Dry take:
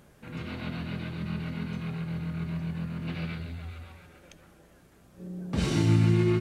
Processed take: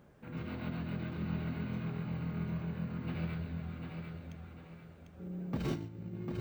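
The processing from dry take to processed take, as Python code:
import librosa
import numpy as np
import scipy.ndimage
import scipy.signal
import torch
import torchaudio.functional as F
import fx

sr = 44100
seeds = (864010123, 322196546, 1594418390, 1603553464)

p1 = fx.highpass(x, sr, hz=50.0, slope=6)
p2 = fx.high_shelf(p1, sr, hz=2500.0, db=-11.5)
p3 = fx.over_compress(p2, sr, threshold_db=-29.0, ratio=-0.5)
p4 = p3 + fx.echo_feedback(p3, sr, ms=748, feedback_pct=35, wet_db=-5.5, dry=0)
p5 = np.repeat(scipy.signal.resample_poly(p4, 1, 2), 2)[:len(p4)]
y = p5 * librosa.db_to_amplitude(-5.5)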